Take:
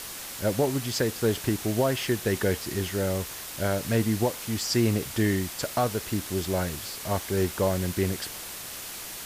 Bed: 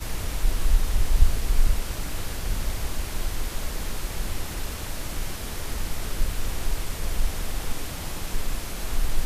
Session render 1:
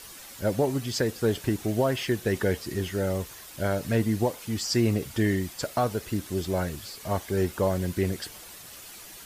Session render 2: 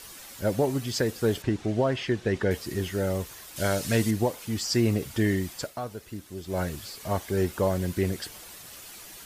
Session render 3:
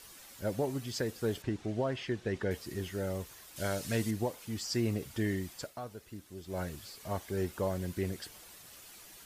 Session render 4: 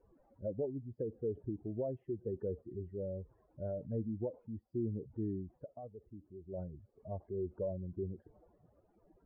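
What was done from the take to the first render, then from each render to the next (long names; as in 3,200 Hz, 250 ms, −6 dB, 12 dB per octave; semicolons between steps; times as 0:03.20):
broadband denoise 9 dB, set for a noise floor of −39 dBFS
0:01.42–0:02.51: high-frequency loss of the air 91 metres; 0:03.56–0:04.11: parametric band 6,800 Hz +10 dB 2.7 octaves; 0:05.57–0:06.61: duck −9 dB, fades 0.16 s
level −8 dB
expanding power law on the bin magnitudes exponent 2; transistor ladder low-pass 800 Hz, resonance 25%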